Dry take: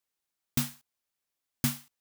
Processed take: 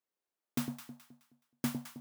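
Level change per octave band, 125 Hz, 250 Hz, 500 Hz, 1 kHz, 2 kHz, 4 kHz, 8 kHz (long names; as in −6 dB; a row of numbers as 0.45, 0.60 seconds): −8.5, −1.0, +2.0, −2.0, −5.5, −9.0, −10.0 decibels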